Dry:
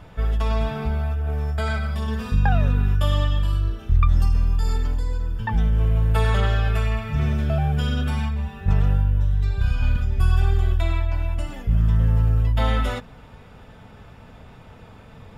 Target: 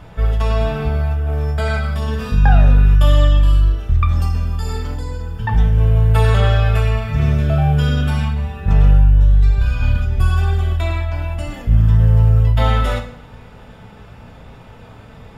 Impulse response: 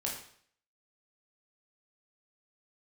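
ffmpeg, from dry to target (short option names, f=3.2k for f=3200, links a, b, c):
-filter_complex "[0:a]asplit=2[a][b];[1:a]atrim=start_sample=2205,asetrate=40572,aresample=44100[c];[b][c]afir=irnorm=-1:irlink=0,volume=-3.5dB[d];[a][d]amix=inputs=2:normalize=0"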